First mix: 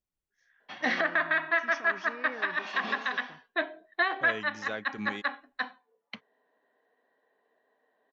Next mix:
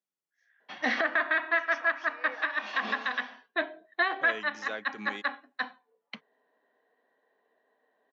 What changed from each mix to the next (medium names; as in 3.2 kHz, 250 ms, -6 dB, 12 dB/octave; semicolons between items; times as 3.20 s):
first voice: add rippled Chebyshev high-pass 490 Hz, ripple 6 dB; second voice: add bass shelf 190 Hz -12 dB; master: add high-pass 140 Hz 24 dB/octave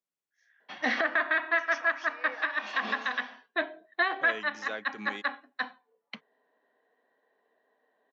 first voice: add treble shelf 3.6 kHz +8.5 dB